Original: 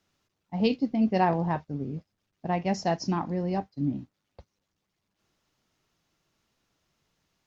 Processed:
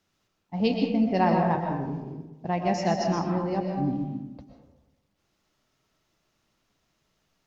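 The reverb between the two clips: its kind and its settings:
comb and all-pass reverb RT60 1.1 s, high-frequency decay 0.45×, pre-delay 85 ms, DRR 1.5 dB

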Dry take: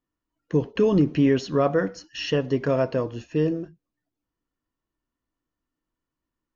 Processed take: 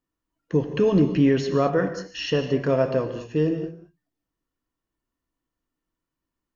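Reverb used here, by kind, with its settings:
reverb whose tail is shaped and stops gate 240 ms flat, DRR 7.5 dB

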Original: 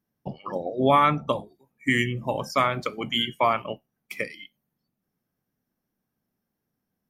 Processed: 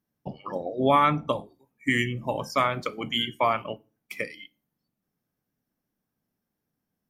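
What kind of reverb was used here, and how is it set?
feedback delay network reverb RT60 0.35 s, low-frequency decay 1.4×, high-frequency decay 0.8×, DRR 17.5 dB
level −1.5 dB

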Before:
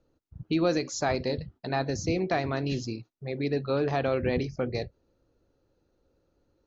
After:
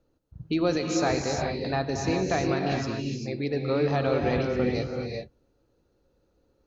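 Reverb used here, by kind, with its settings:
reverb whose tail is shaped and stops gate 430 ms rising, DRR 1.5 dB

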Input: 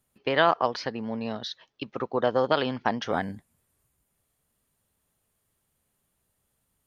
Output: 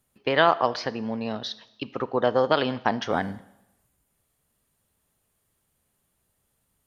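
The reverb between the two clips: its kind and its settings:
four-comb reverb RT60 0.89 s, combs from 25 ms, DRR 16.5 dB
level +2 dB

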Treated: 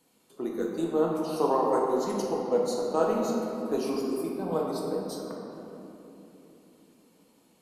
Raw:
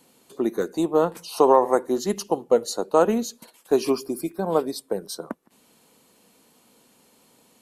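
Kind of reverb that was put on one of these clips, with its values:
rectangular room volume 180 cubic metres, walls hard, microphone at 0.62 metres
level −10.5 dB

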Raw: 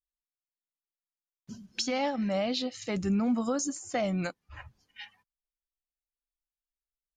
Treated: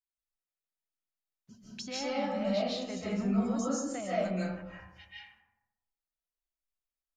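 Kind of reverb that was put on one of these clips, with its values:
comb and all-pass reverb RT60 0.98 s, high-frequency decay 0.4×, pre-delay 110 ms, DRR −8 dB
level −11 dB

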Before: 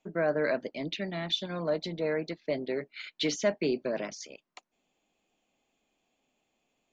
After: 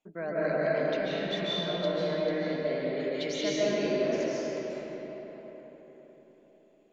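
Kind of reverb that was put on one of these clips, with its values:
comb and all-pass reverb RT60 4.6 s, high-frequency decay 0.55×, pre-delay 105 ms, DRR −9 dB
level −8 dB

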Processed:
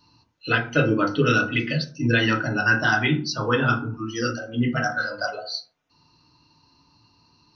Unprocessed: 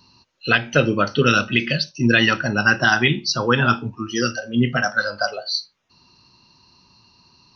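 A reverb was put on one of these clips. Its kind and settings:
feedback delay network reverb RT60 0.41 s, low-frequency decay 1.3×, high-frequency decay 0.25×, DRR −0.5 dB
level −7.5 dB

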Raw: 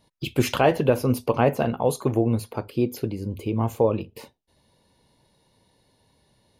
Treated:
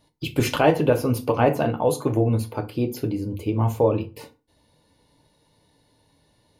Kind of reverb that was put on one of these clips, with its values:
feedback delay network reverb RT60 0.32 s, low-frequency decay 1.2×, high-frequency decay 0.7×, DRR 5.5 dB

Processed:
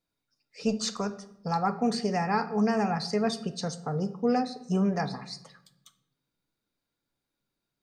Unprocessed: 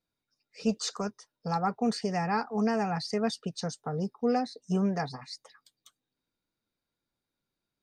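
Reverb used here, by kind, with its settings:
rectangular room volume 230 cubic metres, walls mixed, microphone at 0.3 metres
level +1.5 dB

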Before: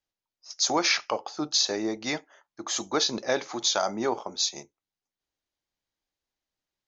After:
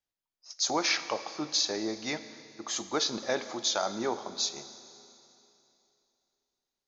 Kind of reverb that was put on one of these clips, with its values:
four-comb reverb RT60 2.9 s, combs from 28 ms, DRR 12 dB
level −4 dB

